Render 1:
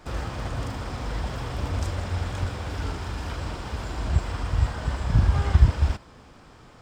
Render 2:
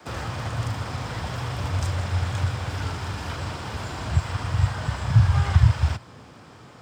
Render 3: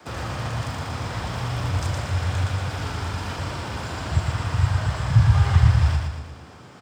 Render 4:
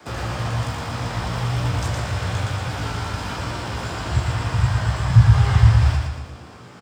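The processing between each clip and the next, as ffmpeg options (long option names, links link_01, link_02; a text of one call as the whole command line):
ffmpeg -i in.wav -filter_complex "[0:a]highpass=frequency=83:width=0.5412,highpass=frequency=83:width=1.3066,adynamicequalizer=threshold=0.0126:dfrequency=120:dqfactor=1.8:tfrequency=120:tqfactor=1.8:attack=5:release=100:ratio=0.375:range=3.5:mode=boostabove:tftype=bell,acrossover=split=140|630|2100[link_01][link_02][link_03][link_04];[link_02]acompressor=threshold=-42dB:ratio=6[link_05];[link_01][link_05][link_03][link_04]amix=inputs=4:normalize=0,volume=3.5dB" out.wav
ffmpeg -i in.wav -af "aecho=1:1:116|232|348|464|580|696:0.631|0.315|0.158|0.0789|0.0394|0.0197" out.wav
ffmpeg -i in.wav -filter_complex "[0:a]asplit=2[link_01][link_02];[link_02]adelay=17,volume=-5dB[link_03];[link_01][link_03]amix=inputs=2:normalize=0,volume=1.5dB" out.wav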